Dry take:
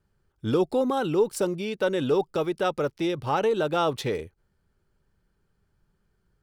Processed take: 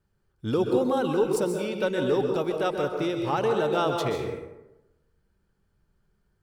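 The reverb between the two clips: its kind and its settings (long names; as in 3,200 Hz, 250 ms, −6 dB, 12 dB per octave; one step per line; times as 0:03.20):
dense smooth reverb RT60 0.99 s, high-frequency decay 0.5×, pre-delay 115 ms, DRR 3.5 dB
level −2 dB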